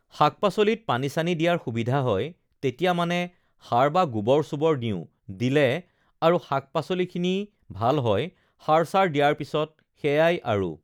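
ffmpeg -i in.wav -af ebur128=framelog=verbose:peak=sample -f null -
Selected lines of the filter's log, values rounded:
Integrated loudness:
  I:         -24.5 LUFS
  Threshold: -34.9 LUFS
Loudness range:
  LRA:         1.7 LU
  Threshold: -45.1 LUFS
  LRA low:   -25.9 LUFS
  LRA high:  -24.3 LUFS
Sample peak:
  Peak:       -5.7 dBFS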